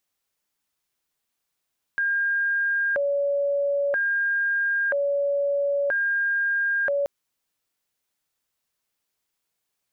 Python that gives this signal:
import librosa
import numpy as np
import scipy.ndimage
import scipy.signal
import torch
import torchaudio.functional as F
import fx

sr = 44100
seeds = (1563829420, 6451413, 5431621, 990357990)

y = fx.siren(sr, length_s=5.08, kind='hi-lo', low_hz=566.0, high_hz=1610.0, per_s=0.51, wave='sine', level_db=-20.5)